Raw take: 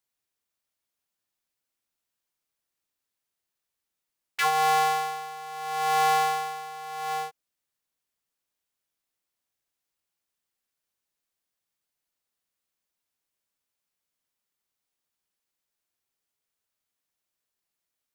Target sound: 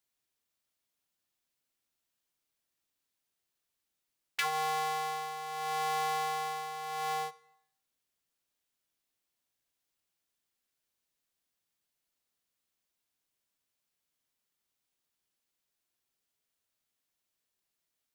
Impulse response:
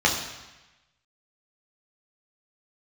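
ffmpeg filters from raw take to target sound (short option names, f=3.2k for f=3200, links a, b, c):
-filter_complex "[0:a]acompressor=threshold=-28dB:ratio=5,asplit=2[a][b];[1:a]atrim=start_sample=2205,asetrate=66150,aresample=44100[c];[b][c]afir=irnorm=-1:irlink=0,volume=-26dB[d];[a][d]amix=inputs=2:normalize=0"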